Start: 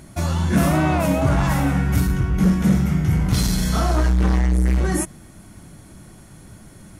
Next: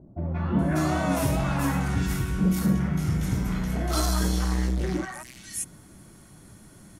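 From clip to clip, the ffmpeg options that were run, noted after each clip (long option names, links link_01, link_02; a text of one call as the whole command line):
ffmpeg -i in.wav -filter_complex "[0:a]lowshelf=frequency=150:gain=-6,acrossover=split=680|2400[link_01][link_02][link_03];[link_02]adelay=180[link_04];[link_03]adelay=590[link_05];[link_01][link_04][link_05]amix=inputs=3:normalize=0,volume=-3.5dB" out.wav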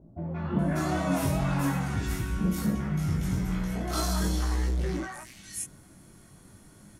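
ffmpeg -i in.wav -af "flanger=delay=18:depth=4.4:speed=0.41" out.wav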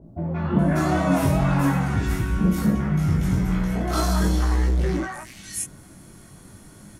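ffmpeg -i in.wav -af "adynamicequalizer=threshold=0.00355:dfrequency=2700:dqfactor=0.7:tfrequency=2700:tqfactor=0.7:attack=5:release=100:ratio=0.375:range=3:mode=cutabove:tftype=highshelf,volume=7dB" out.wav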